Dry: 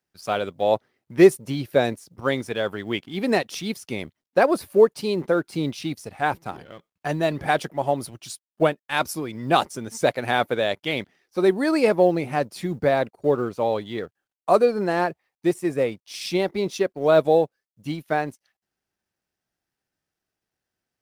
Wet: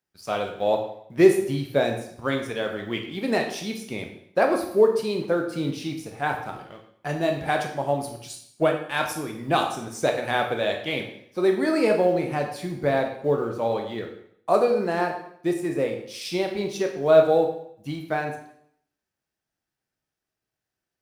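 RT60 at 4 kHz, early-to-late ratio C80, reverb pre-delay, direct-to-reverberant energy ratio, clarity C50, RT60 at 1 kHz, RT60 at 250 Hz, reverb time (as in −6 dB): 0.60 s, 10.0 dB, 8 ms, 2.5 dB, 7.5 dB, 0.65 s, 0.65 s, 0.65 s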